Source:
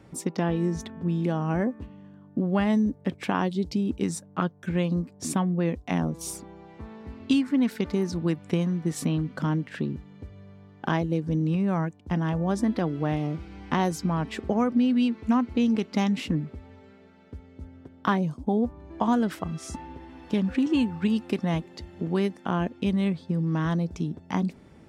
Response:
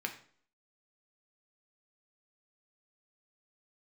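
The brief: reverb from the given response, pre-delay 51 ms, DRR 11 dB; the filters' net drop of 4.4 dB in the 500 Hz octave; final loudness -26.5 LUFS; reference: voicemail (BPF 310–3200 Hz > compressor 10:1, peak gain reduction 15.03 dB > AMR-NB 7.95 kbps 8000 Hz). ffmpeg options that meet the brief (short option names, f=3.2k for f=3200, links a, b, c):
-filter_complex "[0:a]equalizer=f=500:t=o:g=-4.5,asplit=2[a][b];[1:a]atrim=start_sample=2205,adelay=51[c];[b][c]afir=irnorm=-1:irlink=0,volume=-14dB[d];[a][d]amix=inputs=2:normalize=0,highpass=310,lowpass=3.2k,acompressor=threshold=-35dB:ratio=10,volume=15dB" -ar 8000 -c:a libopencore_amrnb -b:a 7950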